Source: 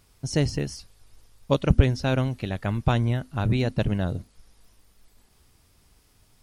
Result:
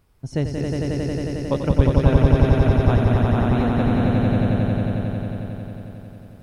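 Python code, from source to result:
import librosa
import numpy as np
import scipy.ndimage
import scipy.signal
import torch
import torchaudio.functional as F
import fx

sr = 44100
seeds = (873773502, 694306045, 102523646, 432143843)

p1 = fx.peak_eq(x, sr, hz=7100.0, db=-12.5, octaves=2.7)
y = p1 + fx.echo_swell(p1, sr, ms=90, loudest=5, wet_db=-3, dry=0)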